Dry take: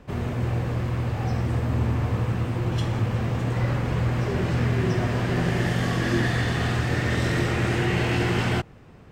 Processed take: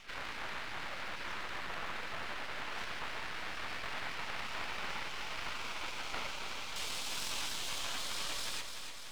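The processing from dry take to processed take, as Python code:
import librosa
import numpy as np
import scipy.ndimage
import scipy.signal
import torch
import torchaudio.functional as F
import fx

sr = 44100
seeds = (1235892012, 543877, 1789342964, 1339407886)

y = fx.octave_divider(x, sr, octaves=1, level_db=4.0)
y = fx.highpass(y, sr, hz=330.0, slope=6)
y = fx.spec_gate(y, sr, threshold_db=-20, keep='weak')
y = fx.lowpass(y, sr, hz=fx.steps((0.0, 2400.0), (6.76, 7900.0)), slope=12)
y = np.maximum(y, 0.0)
y = fx.echo_feedback(y, sr, ms=293, feedback_pct=48, wet_db=-12.0)
y = fx.env_flatten(y, sr, amount_pct=50)
y = y * librosa.db_to_amplitude(4.0)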